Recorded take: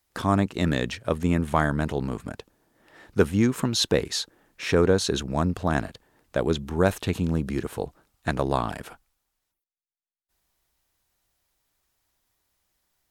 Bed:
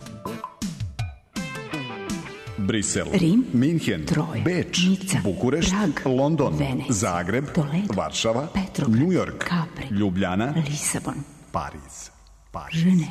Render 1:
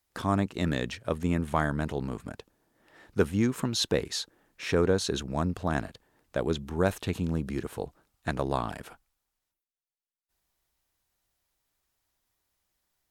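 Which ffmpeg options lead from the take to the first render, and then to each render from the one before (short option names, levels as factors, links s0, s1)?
-af "volume=0.596"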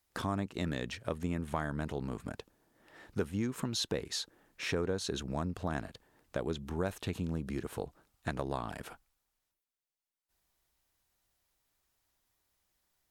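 -af "acompressor=threshold=0.02:ratio=2.5"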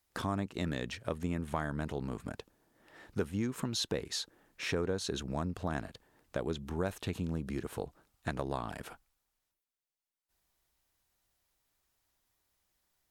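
-af anull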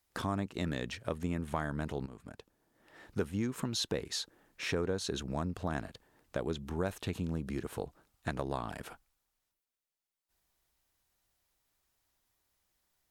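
-filter_complex "[0:a]asplit=2[s0][s1];[s0]atrim=end=2.06,asetpts=PTS-STARTPTS,afade=t=out:st=2.056:d=0.004:c=hsin:silence=0.237137[s2];[s1]atrim=start=2.06,asetpts=PTS-STARTPTS,afade=t=in:d=1.02:silence=0.237137[s3];[s2][s3]concat=n=2:v=0:a=1"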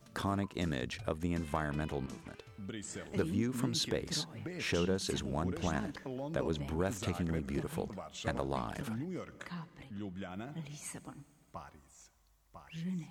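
-filter_complex "[1:a]volume=0.1[s0];[0:a][s0]amix=inputs=2:normalize=0"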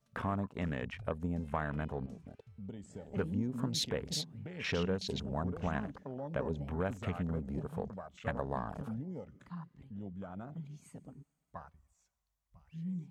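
-af "afwtdn=0.00631,equalizer=f=330:t=o:w=0.24:g=-13"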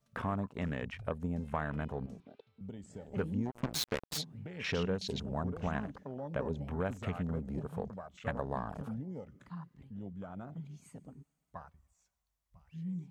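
-filter_complex "[0:a]asettb=1/sr,asplit=3[s0][s1][s2];[s0]atrim=end=2.204[s3];[s1]atrim=start=2.2:end=2.61,asetpts=PTS-STARTPTS,afade=t=in:d=0.004:c=qsin,afade=t=out:st=0.406:d=0.004:c=qsin,highpass=280,equalizer=f=330:t=q:w=4:g=4,equalizer=f=1800:t=q:w=4:g=-5,equalizer=f=3700:t=q:w=4:g=8,lowpass=f=4700:w=0.5412,lowpass=f=4700:w=1.3066[s4];[s2]atrim=start=2.606[s5];[s3][s4]acrossfade=d=0.004:c1=hsin:c2=qsin[s6];[s6][s5]acrossfade=d=0.004:c1=qsin:c2=hsin,asplit=3[s7][s8][s9];[s7]afade=t=out:st=3.45:d=0.02[s10];[s8]acrusher=bits=4:mix=0:aa=0.5,afade=t=in:st=3.45:d=0.02,afade=t=out:st=4.17:d=0.02[s11];[s9]afade=t=in:st=4.17:d=0.02[s12];[s10][s11][s12]amix=inputs=3:normalize=0"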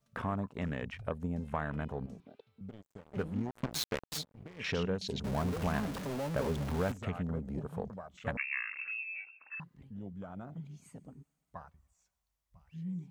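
-filter_complex "[0:a]asettb=1/sr,asplit=3[s0][s1][s2];[s0]atrim=end=2.694[s3];[s1]atrim=start=2.69:end=4.6,asetpts=PTS-STARTPTS,afade=t=in:d=0.004:c=qsin,afade=t=out:st=1.906:d=0.004:c=qsin,aeval=exprs='sgn(val(0))*max(abs(val(0))-0.00355,0)':c=same[s4];[s2]atrim=start=4.596[s5];[s3][s4]acrossfade=d=0.004:c1=hsin:c2=qsin[s6];[s6][s5]acrossfade=d=0.004:c1=qsin:c2=hsin,asettb=1/sr,asplit=3[s7][s8][s9];[s7]atrim=end=5.244[s10];[s8]atrim=start=5.24:end=6.92,asetpts=PTS-STARTPTS,afade=t=in:d=0.004:c=qsin,afade=t=out:st=1.676:d=0.004:c=qsin,aeval=exprs='val(0)+0.5*0.0168*sgn(val(0))':c=same[s11];[s9]atrim=start=6.916[s12];[s10][s11]acrossfade=d=0.004:c1=hsin:c2=qsin[s13];[s13][s12]acrossfade=d=0.004:c1=qsin:c2=hsin,asettb=1/sr,asplit=3[s14][s15][s16];[s14]atrim=end=8.374[s17];[s15]atrim=start=8.37:end=9.6,asetpts=PTS-STARTPTS,afade=t=in:d=0.004:c=qsin,afade=t=out:st=1.226:d=0.004:c=qsin,lowpass=f=2400:t=q:w=0.5098,lowpass=f=2400:t=q:w=0.6013,lowpass=f=2400:t=q:w=0.9,lowpass=f=2400:t=q:w=2.563,afreqshift=-2800[s18];[s16]atrim=start=9.596[s19];[s17][s18]acrossfade=d=0.004:c1=hsin:c2=qsin[s20];[s20][s19]acrossfade=d=0.004:c1=qsin:c2=hsin"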